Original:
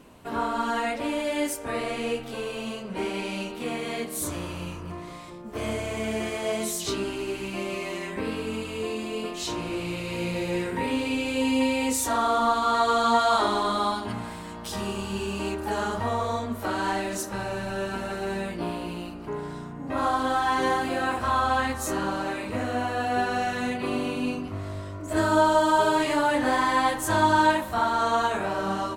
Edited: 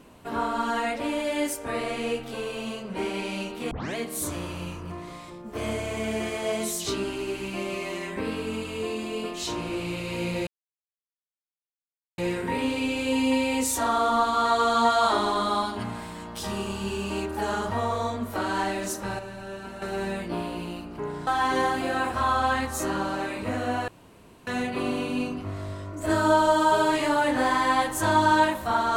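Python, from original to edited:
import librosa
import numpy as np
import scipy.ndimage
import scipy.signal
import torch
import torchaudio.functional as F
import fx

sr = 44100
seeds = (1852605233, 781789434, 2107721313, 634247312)

y = fx.edit(x, sr, fx.tape_start(start_s=3.71, length_s=0.25),
    fx.insert_silence(at_s=10.47, length_s=1.71),
    fx.clip_gain(start_s=17.48, length_s=0.63, db=-7.5),
    fx.cut(start_s=19.56, length_s=0.78),
    fx.room_tone_fill(start_s=22.95, length_s=0.59), tone=tone)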